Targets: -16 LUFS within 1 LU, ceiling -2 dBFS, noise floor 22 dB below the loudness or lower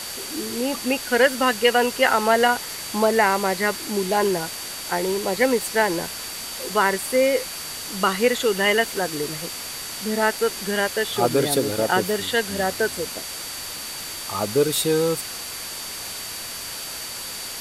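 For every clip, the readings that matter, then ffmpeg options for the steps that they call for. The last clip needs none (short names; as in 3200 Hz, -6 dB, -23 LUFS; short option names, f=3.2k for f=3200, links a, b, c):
steady tone 4600 Hz; tone level -37 dBFS; noise floor -33 dBFS; noise floor target -45 dBFS; loudness -22.5 LUFS; peak -3.0 dBFS; loudness target -16.0 LUFS
-> -af "bandreject=f=4.6k:w=30"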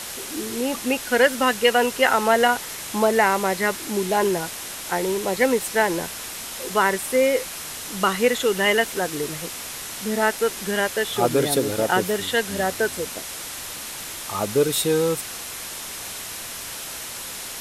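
steady tone none; noise floor -34 dBFS; noise floor target -45 dBFS
-> -af "afftdn=nr=11:nf=-34"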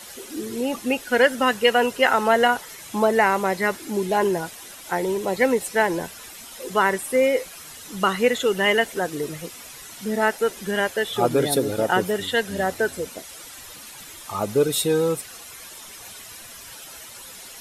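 noise floor -41 dBFS; noise floor target -44 dBFS
-> -af "afftdn=nr=6:nf=-41"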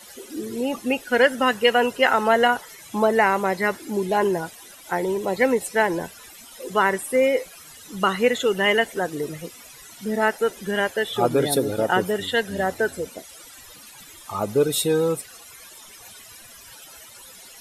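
noise floor -45 dBFS; loudness -22.0 LUFS; peak -3.0 dBFS; loudness target -16.0 LUFS
-> -af "volume=6dB,alimiter=limit=-2dB:level=0:latency=1"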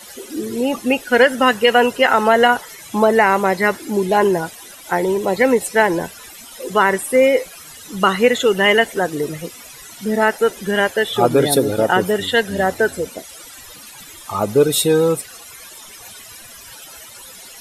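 loudness -16.5 LUFS; peak -2.0 dBFS; noise floor -39 dBFS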